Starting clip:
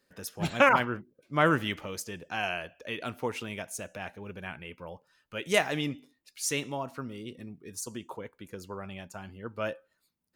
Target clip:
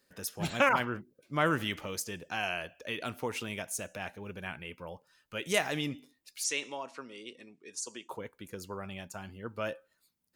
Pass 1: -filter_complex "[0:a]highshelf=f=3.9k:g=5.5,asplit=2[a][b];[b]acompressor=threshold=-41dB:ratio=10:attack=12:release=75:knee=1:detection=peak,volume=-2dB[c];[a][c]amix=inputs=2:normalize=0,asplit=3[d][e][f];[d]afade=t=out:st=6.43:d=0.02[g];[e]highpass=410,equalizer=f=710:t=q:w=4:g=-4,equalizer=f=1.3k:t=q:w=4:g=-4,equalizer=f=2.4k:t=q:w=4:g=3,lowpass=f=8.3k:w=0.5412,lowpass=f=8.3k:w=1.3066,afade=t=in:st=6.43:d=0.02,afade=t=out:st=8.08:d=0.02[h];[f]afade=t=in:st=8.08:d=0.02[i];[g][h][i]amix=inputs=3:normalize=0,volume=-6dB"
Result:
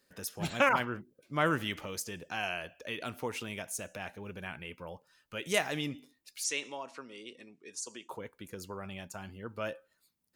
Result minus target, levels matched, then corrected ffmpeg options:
compressor: peak gain reduction +6.5 dB
-filter_complex "[0:a]highshelf=f=3.9k:g=5.5,asplit=2[a][b];[b]acompressor=threshold=-34dB:ratio=10:attack=12:release=75:knee=1:detection=peak,volume=-2dB[c];[a][c]amix=inputs=2:normalize=0,asplit=3[d][e][f];[d]afade=t=out:st=6.43:d=0.02[g];[e]highpass=410,equalizer=f=710:t=q:w=4:g=-4,equalizer=f=1.3k:t=q:w=4:g=-4,equalizer=f=2.4k:t=q:w=4:g=3,lowpass=f=8.3k:w=0.5412,lowpass=f=8.3k:w=1.3066,afade=t=in:st=6.43:d=0.02,afade=t=out:st=8.08:d=0.02[h];[f]afade=t=in:st=8.08:d=0.02[i];[g][h][i]amix=inputs=3:normalize=0,volume=-6dB"

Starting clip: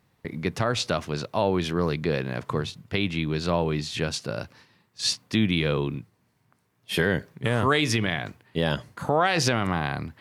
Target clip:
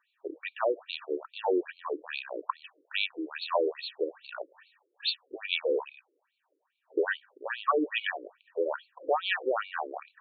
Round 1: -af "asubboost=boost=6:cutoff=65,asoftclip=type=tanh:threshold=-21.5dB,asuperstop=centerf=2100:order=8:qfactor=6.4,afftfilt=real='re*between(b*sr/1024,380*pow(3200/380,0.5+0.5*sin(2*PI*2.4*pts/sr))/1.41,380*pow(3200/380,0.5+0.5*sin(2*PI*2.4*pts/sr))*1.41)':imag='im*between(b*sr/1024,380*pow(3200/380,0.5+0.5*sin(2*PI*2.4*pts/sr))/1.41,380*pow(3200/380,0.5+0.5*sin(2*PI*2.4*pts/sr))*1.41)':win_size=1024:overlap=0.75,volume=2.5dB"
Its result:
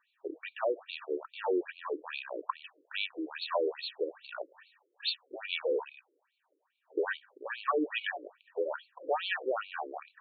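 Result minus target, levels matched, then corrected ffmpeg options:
soft clip: distortion +15 dB
-af "asubboost=boost=6:cutoff=65,asoftclip=type=tanh:threshold=-9.5dB,asuperstop=centerf=2100:order=8:qfactor=6.4,afftfilt=real='re*between(b*sr/1024,380*pow(3200/380,0.5+0.5*sin(2*PI*2.4*pts/sr))/1.41,380*pow(3200/380,0.5+0.5*sin(2*PI*2.4*pts/sr))*1.41)':imag='im*between(b*sr/1024,380*pow(3200/380,0.5+0.5*sin(2*PI*2.4*pts/sr))/1.41,380*pow(3200/380,0.5+0.5*sin(2*PI*2.4*pts/sr))*1.41)':win_size=1024:overlap=0.75,volume=2.5dB"

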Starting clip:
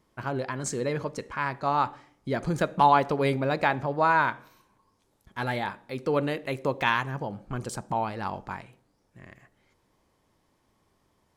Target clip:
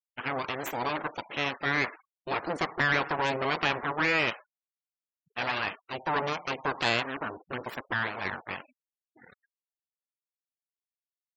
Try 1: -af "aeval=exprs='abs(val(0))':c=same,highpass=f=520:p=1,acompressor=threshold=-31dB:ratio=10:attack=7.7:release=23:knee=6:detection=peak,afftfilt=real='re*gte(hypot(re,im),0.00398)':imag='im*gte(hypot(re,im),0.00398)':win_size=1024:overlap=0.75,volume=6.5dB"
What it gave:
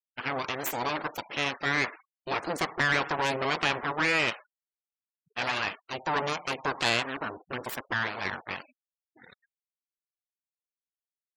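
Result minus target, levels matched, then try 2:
8000 Hz band +7.5 dB
-af "aeval=exprs='abs(val(0))':c=same,highpass=f=520:p=1,highshelf=f=5.6k:g=-9,acompressor=threshold=-31dB:ratio=10:attack=7.7:release=23:knee=6:detection=peak,afftfilt=real='re*gte(hypot(re,im),0.00398)':imag='im*gte(hypot(re,im),0.00398)':win_size=1024:overlap=0.75,volume=6.5dB"

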